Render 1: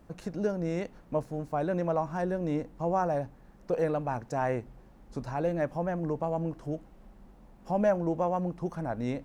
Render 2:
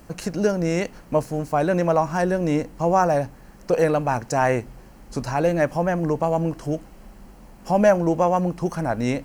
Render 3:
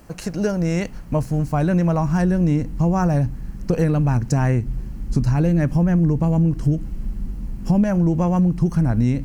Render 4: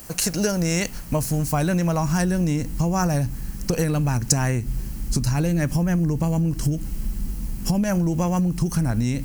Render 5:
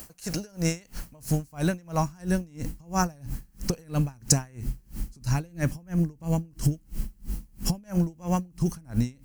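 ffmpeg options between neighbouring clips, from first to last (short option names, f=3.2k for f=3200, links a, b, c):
-af "highshelf=f=2.2k:g=10.5,bandreject=f=3.6k:w=7,volume=8.5dB"
-af "asubboost=boost=10.5:cutoff=200,acompressor=threshold=-14dB:ratio=6"
-af "acompressor=threshold=-18dB:ratio=6,crystalizer=i=5.5:c=0"
-af "aeval=exprs='val(0)*pow(10,-31*(0.5-0.5*cos(2*PI*3*n/s))/20)':c=same"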